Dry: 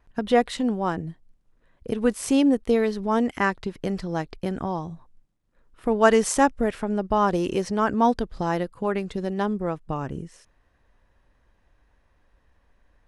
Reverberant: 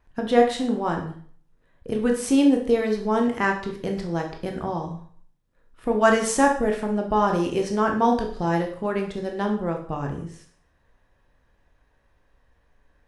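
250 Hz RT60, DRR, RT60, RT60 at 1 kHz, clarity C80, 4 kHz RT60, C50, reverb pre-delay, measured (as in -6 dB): 0.50 s, 1.5 dB, 0.50 s, 0.50 s, 11.5 dB, 0.50 s, 7.5 dB, 7 ms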